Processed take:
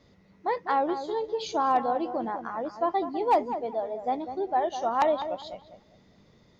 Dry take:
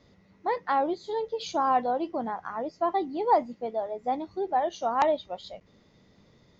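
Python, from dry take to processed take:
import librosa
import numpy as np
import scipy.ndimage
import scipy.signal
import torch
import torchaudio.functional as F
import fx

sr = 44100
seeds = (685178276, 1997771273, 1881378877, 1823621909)

y = np.clip(x, -10.0 ** (-15.5 / 20.0), 10.0 ** (-15.5 / 20.0))
y = fx.echo_filtered(y, sr, ms=200, feedback_pct=30, hz=1400.0, wet_db=-9)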